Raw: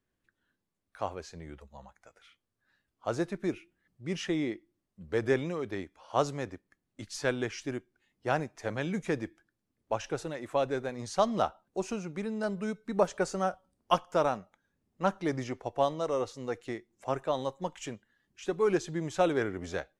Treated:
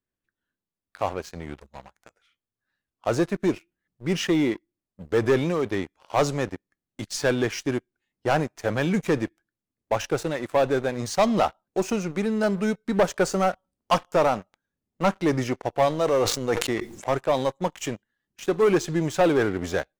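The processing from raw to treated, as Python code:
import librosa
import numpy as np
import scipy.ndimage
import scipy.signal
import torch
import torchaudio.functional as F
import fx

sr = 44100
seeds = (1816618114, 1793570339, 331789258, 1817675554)

y = fx.leveller(x, sr, passes=3)
y = fx.sustainer(y, sr, db_per_s=60.0, at=(15.9, 17.1))
y = y * 10.0 ** (-1.5 / 20.0)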